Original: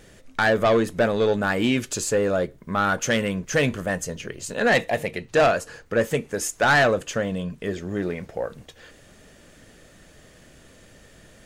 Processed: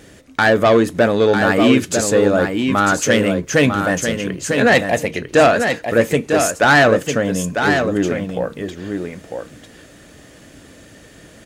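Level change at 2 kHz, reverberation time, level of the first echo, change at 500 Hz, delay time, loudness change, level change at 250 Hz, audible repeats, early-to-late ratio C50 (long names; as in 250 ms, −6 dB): +7.0 dB, no reverb audible, −6.0 dB, +7.5 dB, 949 ms, +7.5 dB, +9.5 dB, 1, no reverb audible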